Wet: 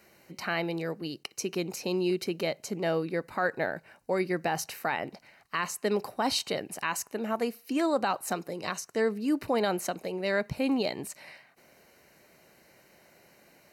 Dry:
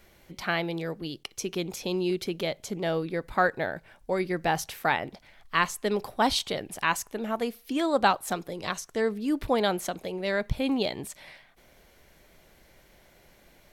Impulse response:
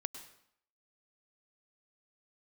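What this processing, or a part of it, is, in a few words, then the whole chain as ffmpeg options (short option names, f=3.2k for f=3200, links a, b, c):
PA system with an anti-feedback notch: -af "highpass=140,asuperstop=centerf=3400:order=4:qfactor=5.6,alimiter=limit=-17dB:level=0:latency=1:release=46"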